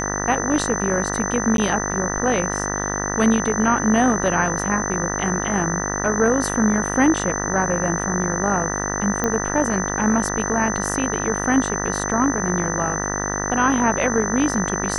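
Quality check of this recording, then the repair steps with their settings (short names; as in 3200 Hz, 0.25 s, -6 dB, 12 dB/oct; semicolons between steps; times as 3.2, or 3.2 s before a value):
buzz 50 Hz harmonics 39 -26 dBFS
tone 6100 Hz -27 dBFS
1.57–1.58 gap 12 ms
9.24 pop -8 dBFS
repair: de-click; notch 6100 Hz, Q 30; de-hum 50 Hz, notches 39; interpolate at 1.57, 12 ms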